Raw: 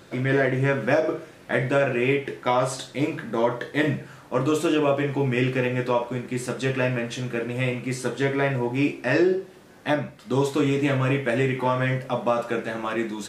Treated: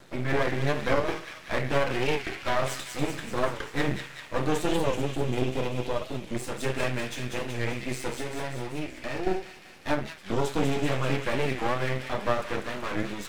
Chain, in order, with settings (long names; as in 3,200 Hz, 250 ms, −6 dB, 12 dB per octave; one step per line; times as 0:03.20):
0:04.74–0:06.35: flat-topped bell 1,300 Hz −15 dB
0:08.13–0:09.27: downward compressor, threshold −26 dBFS, peak gain reduction 10.5 dB
half-wave rectification
delay with a high-pass on its return 194 ms, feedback 67%, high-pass 2,200 Hz, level −4 dB
wow of a warped record 45 rpm, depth 160 cents